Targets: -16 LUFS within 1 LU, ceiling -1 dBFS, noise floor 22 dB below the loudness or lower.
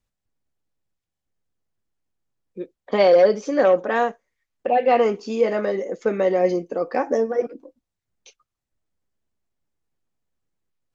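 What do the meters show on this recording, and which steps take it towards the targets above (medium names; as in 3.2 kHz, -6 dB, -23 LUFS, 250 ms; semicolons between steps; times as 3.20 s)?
loudness -20.5 LUFS; peak level -6.5 dBFS; loudness target -16.0 LUFS
-> trim +4.5 dB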